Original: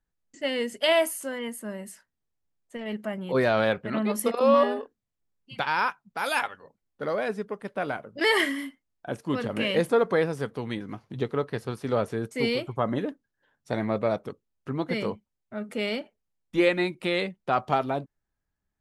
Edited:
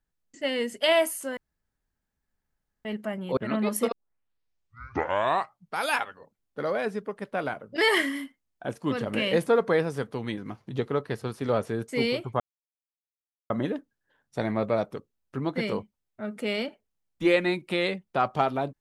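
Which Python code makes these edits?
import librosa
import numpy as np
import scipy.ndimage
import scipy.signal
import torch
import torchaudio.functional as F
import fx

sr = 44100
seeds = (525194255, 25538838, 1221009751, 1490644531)

y = fx.edit(x, sr, fx.room_tone_fill(start_s=1.37, length_s=1.48),
    fx.cut(start_s=3.37, length_s=0.43),
    fx.tape_start(start_s=4.35, length_s=1.92),
    fx.insert_silence(at_s=12.83, length_s=1.1), tone=tone)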